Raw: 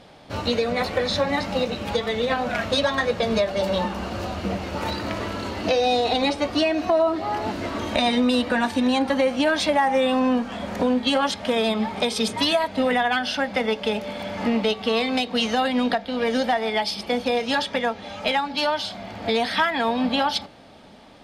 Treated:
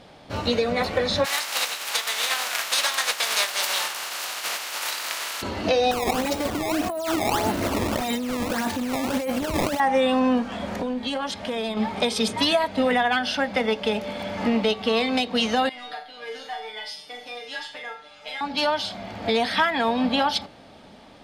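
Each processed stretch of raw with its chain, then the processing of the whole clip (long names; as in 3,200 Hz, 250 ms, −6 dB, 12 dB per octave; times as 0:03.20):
0:01.24–0:05.41: compressing power law on the bin magnitudes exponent 0.4 + high-pass filter 920 Hz
0:05.91–0:09.80: compressor whose output falls as the input rises −25 dBFS + sample-and-hold swept by an LFO 17×, swing 160% 1.7 Hz
0:10.77–0:11.77: notch filter 1,300 Hz, Q 21 + downward compressor 2 to 1, threshold −27 dBFS + amplitude modulation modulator 240 Hz, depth 10%
0:15.69–0:18.41: parametric band 180 Hz −12.5 dB 2.9 octaves + tuned comb filter 150 Hz, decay 0.19 s, mix 100% + flutter between parallel walls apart 7.1 metres, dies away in 0.42 s
whole clip: no processing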